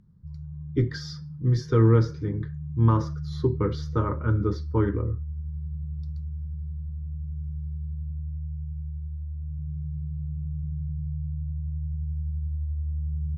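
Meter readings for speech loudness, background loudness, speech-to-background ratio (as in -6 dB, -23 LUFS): -25.5 LUFS, -34.5 LUFS, 9.0 dB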